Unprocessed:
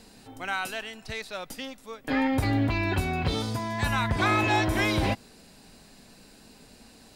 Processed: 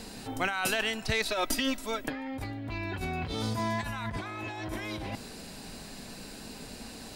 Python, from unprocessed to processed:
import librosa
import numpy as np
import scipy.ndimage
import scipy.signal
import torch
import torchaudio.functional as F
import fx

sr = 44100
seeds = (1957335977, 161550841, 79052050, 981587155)

y = fx.comb(x, sr, ms=3.1, depth=0.9, at=(1.25, 2.06))
y = fx.over_compress(y, sr, threshold_db=-35.0, ratio=-1.0)
y = y * librosa.db_to_amplitude(1.5)